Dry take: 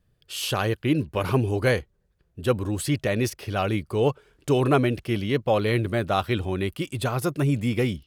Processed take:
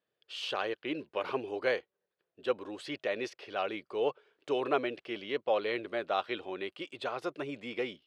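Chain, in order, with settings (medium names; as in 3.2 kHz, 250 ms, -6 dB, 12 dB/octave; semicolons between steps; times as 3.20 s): Chebyshev band-pass 450–3700 Hz, order 2; trim -6.5 dB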